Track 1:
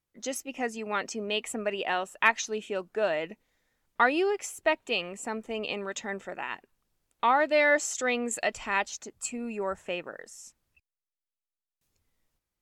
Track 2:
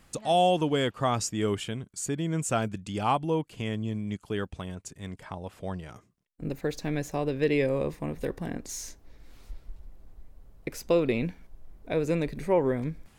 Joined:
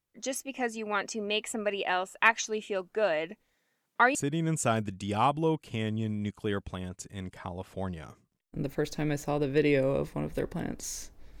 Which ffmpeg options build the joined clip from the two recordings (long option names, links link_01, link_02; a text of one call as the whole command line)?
ffmpeg -i cue0.wav -i cue1.wav -filter_complex "[0:a]asettb=1/sr,asplit=3[link_01][link_02][link_03];[link_01]atrim=end=3.544[link_04];[link_02]atrim=start=3.54:end=4.15,asetpts=PTS-STARTPTS,afade=type=in:duration=0.004:curve=qsin,afade=type=out:start_time=0.606:duration=0.004:curve=qsin,highpass=frequency=130:width=0.5412,highpass=frequency=130:width=1.3066[link_05];[link_03]atrim=start=4.146[link_06];[link_04][link_05]acrossfade=duration=0.004:curve1=hsin:curve2=qsin[link_07];[link_07][link_06]acrossfade=duration=0.004:curve1=qsin:curve2=hsin,apad=whole_dur=11.4,atrim=end=11.4,atrim=end=4.152[link_08];[1:a]atrim=start=2.008:end=9.26[link_09];[link_08][link_09]acrossfade=duration=0.004:curve1=hsin:curve2=hsin" out.wav